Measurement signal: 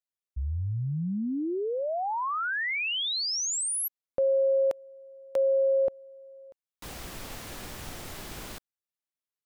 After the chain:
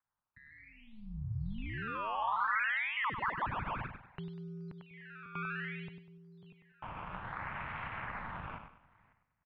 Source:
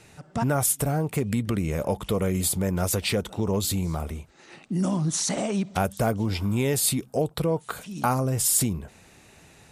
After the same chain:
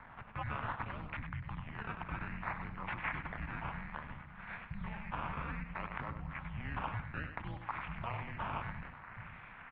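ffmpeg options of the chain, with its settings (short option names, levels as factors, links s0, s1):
-filter_complex "[0:a]asplit=2[s0][s1];[s1]adelay=545,lowpass=f=1300:p=1,volume=0.0794,asplit=2[s2][s3];[s3]adelay=545,lowpass=f=1300:p=1,volume=0.17[s4];[s2][s4]amix=inputs=2:normalize=0[s5];[s0][s5]amix=inputs=2:normalize=0,acompressor=threshold=0.0141:ratio=5:attack=2.7:release=62:knee=1:detection=rms,acrusher=samples=14:mix=1:aa=0.000001:lfo=1:lforange=14:lforate=0.61,highpass=f=210:t=q:w=0.5412,highpass=f=210:t=q:w=1.307,lowpass=f=2600:t=q:w=0.5176,lowpass=f=2600:t=q:w=0.7071,lowpass=f=2600:t=q:w=1.932,afreqshift=-260,lowshelf=f=190:g=3.5,asplit=2[s6][s7];[s7]aecho=0:1:98|196|294|392:0.398|0.135|0.046|0.0156[s8];[s6][s8]amix=inputs=2:normalize=0,aeval=exprs='val(0)*sin(2*PI*110*n/s)':c=same,firequalizer=gain_entry='entry(160,0);entry(370,-11);entry(910,9)':delay=0.05:min_phase=1"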